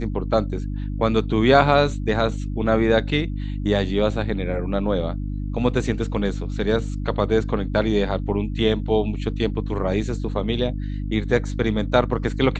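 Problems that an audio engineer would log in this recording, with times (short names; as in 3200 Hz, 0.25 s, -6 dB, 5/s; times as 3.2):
hum 50 Hz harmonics 6 -27 dBFS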